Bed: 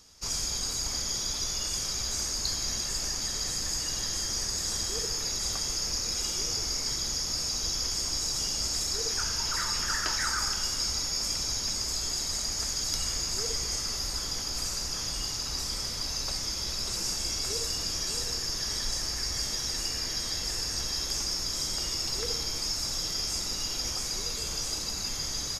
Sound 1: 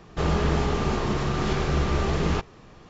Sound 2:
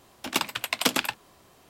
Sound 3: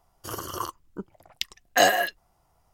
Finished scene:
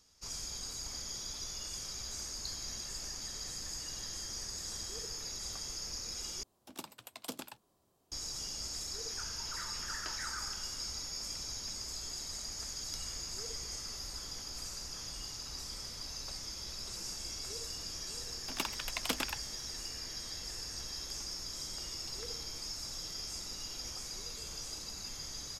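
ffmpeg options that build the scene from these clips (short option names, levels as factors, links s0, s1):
-filter_complex "[2:a]asplit=2[s0][s1];[0:a]volume=0.299[s2];[s0]equalizer=f=2100:t=o:w=1.7:g=-11[s3];[s2]asplit=2[s4][s5];[s4]atrim=end=6.434[s6];[s3]atrim=end=1.69,asetpts=PTS-STARTPTS,volume=0.168[s7];[s5]atrim=start=8.116[s8];[s1]atrim=end=1.69,asetpts=PTS-STARTPTS,volume=0.282,afade=t=in:d=0.004:c=hsin,afade=t=out:st=1.686:d=0.004:c=hsin,adelay=18240[s9];[s6][s7]acrossfade=d=0.004:c1=hsin:c2=hsin[s10];[s10][s8]acrossfade=d=0.004:c1=hsin:c2=hsin[s11];[s11][s9]amix=inputs=2:normalize=0"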